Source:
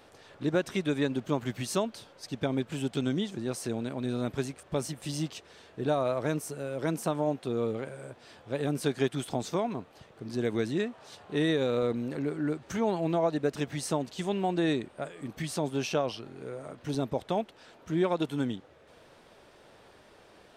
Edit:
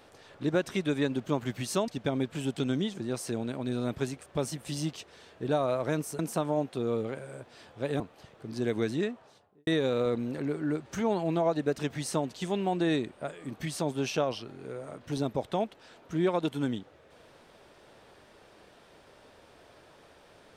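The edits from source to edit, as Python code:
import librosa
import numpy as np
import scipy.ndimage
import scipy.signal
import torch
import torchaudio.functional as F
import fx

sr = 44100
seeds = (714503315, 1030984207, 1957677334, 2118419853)

y = fx.studio_fade_out(x, sr, start_s=10.72, length_s=0.72)
y = fx.edit(y, sr, fx.cut(start_s=1.88, length_s=0.37),
    fx.cut(start_s=6.56, length_s=0.33),
    fx.cut(start_s=8.7, length_s=1.07), tone=tone)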